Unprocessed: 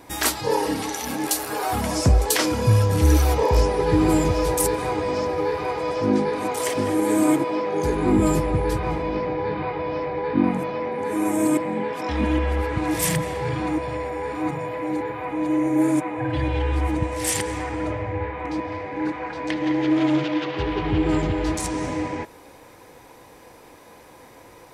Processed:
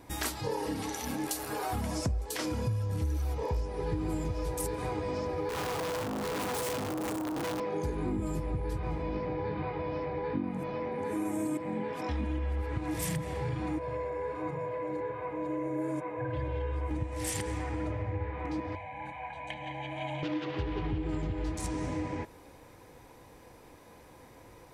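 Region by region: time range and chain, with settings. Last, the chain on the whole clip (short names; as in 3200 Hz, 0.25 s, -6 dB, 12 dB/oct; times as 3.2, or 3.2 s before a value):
5.49–7.6 infinite clipping + HPF 72 Hz + core saturation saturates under 890 Hz
13.79–16.91 HPF 220 Hz 6 dB/oct + high shelf 2800 Hz -11 dB + comb 1.9 ms, depth 58%
18.75–20.23 low shelf 300 Hz -10 dB + fixed phaser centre 1400 Hz, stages 6 + comb 1.3 ms
whole clip: low shelf 190 Hz +9.5 dB; compressor 6:1, threshold -21 dBFS; gain -8.5 dB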